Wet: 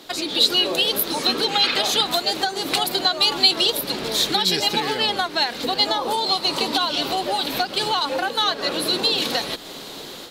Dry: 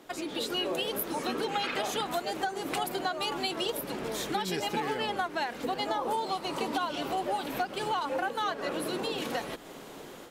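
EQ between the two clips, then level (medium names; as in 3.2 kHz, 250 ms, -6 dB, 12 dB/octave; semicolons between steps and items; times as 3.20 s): peaking EQ 4.1 kHz +14.5 dB 0.81 oct; treble shelf 9.1 kHz +6.5 dB; +6.5 dB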